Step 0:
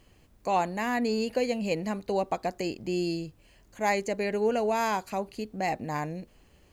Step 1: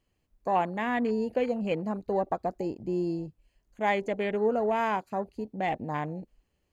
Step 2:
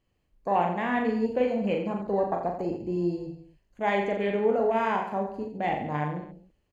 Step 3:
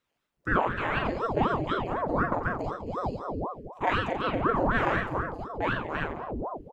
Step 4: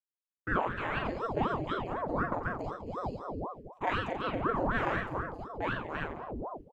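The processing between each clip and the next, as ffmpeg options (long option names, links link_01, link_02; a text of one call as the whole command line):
ffmpeg -i in.wav -af "afwtdn=0.0126" out.wav
ffmpeg -i in.wav -filter_complex "[0:a]highshelf=frequency=5800:gain=-8,asplit=2[link_01][link_02];[link_02]aecho=0:1:40|86|138.9|199.7|269.7:0.631|0.398|0.251|0.158|0.1[link_03];[link_01][link_03]amix=inputs=2:normalize=0" out.wav
ffmpeg -i in.wav -filter_complex "[0:a]acrossover=split=300[link_01][link_02];[link_01]adelay=370[link_03];[link_03][link_02]amix=inputs=2:normalize=0,aeval=exprs='val(0)*sin(2*PI*500*n/s+500*0.85/4*sin(2*PI*4*n/s))':channel_layout=same,volume=3dB" out.wav
ffmpeg -i in.wav -af "agate=range=-33dB:threshold=-39dB:ratio=3:detection=peak,volume=-5dB" out.wav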